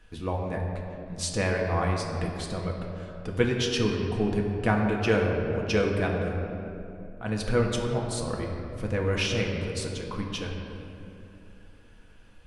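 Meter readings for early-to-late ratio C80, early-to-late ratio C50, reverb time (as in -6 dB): 3.5 dB, 2.5 dB, 2.9 s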